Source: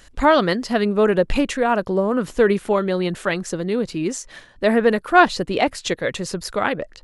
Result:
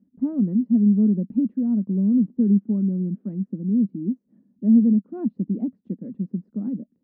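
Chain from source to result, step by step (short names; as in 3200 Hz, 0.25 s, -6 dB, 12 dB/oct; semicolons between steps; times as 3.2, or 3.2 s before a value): Butterworth band-pass 220 Hz, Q 3; gain +6.5 dB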